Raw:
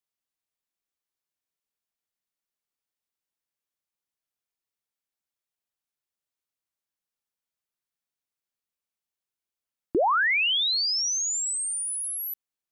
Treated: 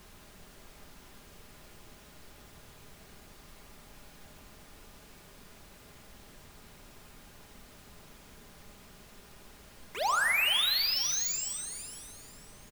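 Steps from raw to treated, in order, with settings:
in parallel at −10.5 dB: wrap-around overflow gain 33.5 dB
on the sum: harmonic generator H 7 −13 dB, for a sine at −18 dBFS
high-pass filter 650 Hz 24 dB per octave
background noise pink −49 dBFS
on a send: repeating echo 473 ms, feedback 35%, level −15 dB
on the sum: rectangular room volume 3,900 cubic metres, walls mixed, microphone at 1.3 metres
level −6 dB

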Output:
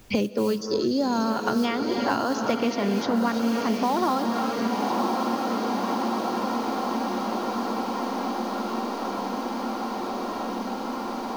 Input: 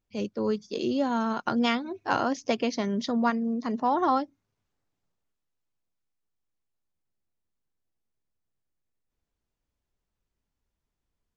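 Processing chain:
0:00.57–0:01.30: high shelf with overshoot 3,600 Hz +8.5 dB, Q 3
in parallel at +0.5 dB: brickwall limiter −20 dBFS, peak gain reduction 10 dB
on the sum: noise that follows the level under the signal 28 dB
on a send: feedback delay with all-pass diffusion 1,070 ms, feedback 56%, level −7 dB
on the sum: reverb whose tail is shaped and stops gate 360 ms rising, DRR 8.5 dB
multiband upward and downward compressor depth 100%
level −2.5 dB

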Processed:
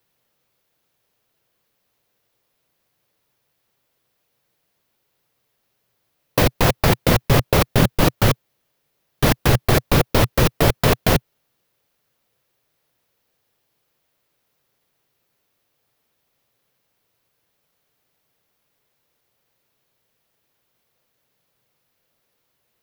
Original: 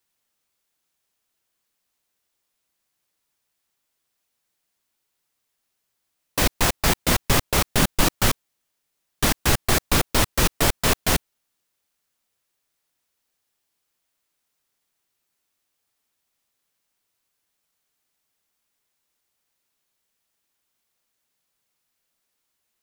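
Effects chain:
octave-band graphic EQ 125/500/8,000 Hz +10/+7/−8 dB
in parallel at −1 dB: compressor whose output falls as the input rises −21 dBFS, ratio −1
on the sum: level −2 dB

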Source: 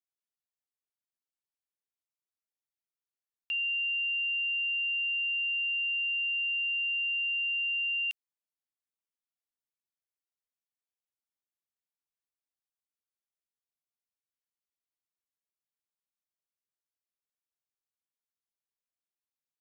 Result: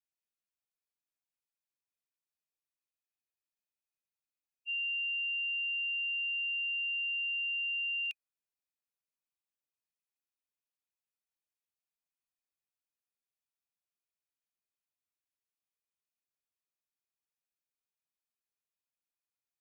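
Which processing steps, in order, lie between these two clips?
hollow resonant body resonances 2,500 Hz, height 12 dB
backwards echo 51 ms −15.5 dB
frozen spectrum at 0:02.79, 1.90 s
level −4.5 dB

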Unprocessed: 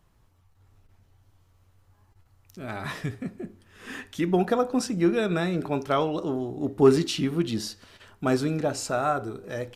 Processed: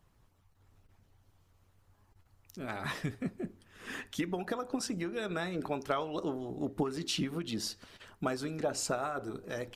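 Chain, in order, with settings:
downward compressor 6 to 1, threshold −26 dBFS, peak gain reduction 13.5 dB
harmonic and percussive parts rebalanced harmonic −9 dB

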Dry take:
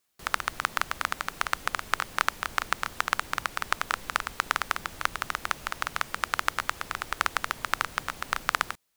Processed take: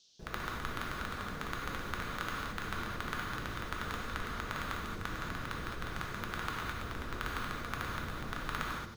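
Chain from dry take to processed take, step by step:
running median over 41 samples
reverb whose tail is shaped and stops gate 250 ms flat, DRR −3.5 dB
noise in a band 3,100–6,300 Hz −67 dBFS
level +1 dB

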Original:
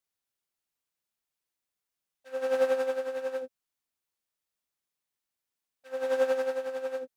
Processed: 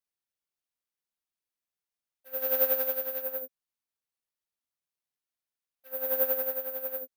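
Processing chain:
bad sample-rate conversion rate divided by 3×, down filtered, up zero stuff
0:02.33–0:03.22: parametric band 5,000 Hz +6 dB 2.5 octaves
level −6 dB

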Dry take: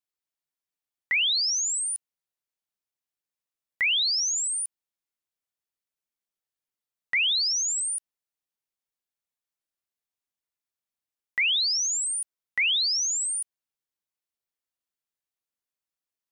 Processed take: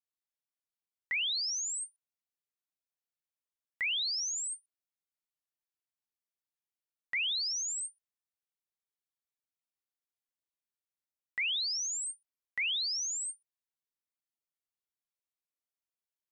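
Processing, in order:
every ending faded ahead of time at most 440 dB per second
level −8.5 dB

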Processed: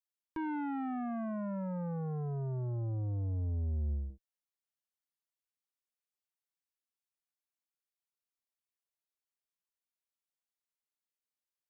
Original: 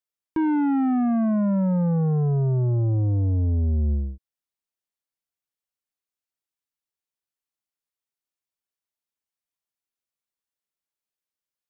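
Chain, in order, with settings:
parametric band 210 Hz −9.5 dB 2.8 octaves, from 0:04.10 88 Hz
level −7 dB

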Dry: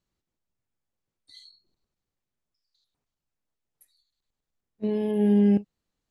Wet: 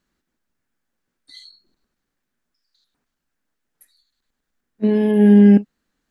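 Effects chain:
graphic EQ with 15 bands 100 Hz −9 dB, 250 Hz +7 dB, 1,600 Hz +9 dB
level +7 dB

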